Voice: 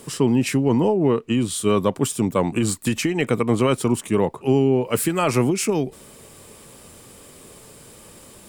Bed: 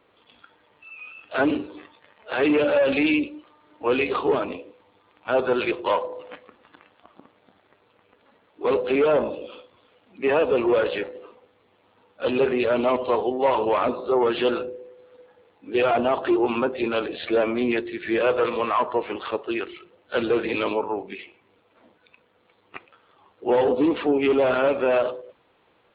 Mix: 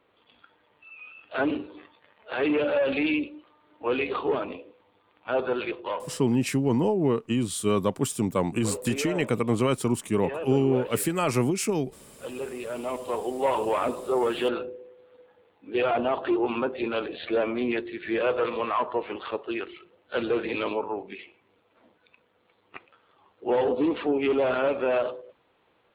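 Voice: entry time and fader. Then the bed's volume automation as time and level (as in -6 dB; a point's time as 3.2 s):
6.00 s, -5.0 dB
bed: 5.44 s -4.5 dB
6.42 s -13.5 dB
12.62 s -13.5 dB
13.45 s -4 dB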